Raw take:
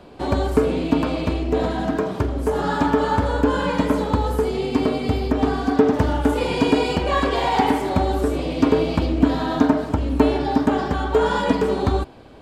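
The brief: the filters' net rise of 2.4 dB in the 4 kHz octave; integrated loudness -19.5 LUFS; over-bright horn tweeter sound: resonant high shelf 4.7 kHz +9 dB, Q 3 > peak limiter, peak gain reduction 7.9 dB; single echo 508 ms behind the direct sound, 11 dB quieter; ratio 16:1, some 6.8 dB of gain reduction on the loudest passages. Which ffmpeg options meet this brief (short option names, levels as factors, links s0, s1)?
-af "equalizer=f=4000:t=o:g=5,acompressor=threshold=0.126:ratio=16,highshelf=f=4700:t=q:w=3:g=9,aecho=1:1:508:0.282,volume=1.88,alimiter=limit=0.335:level=0:latency=1"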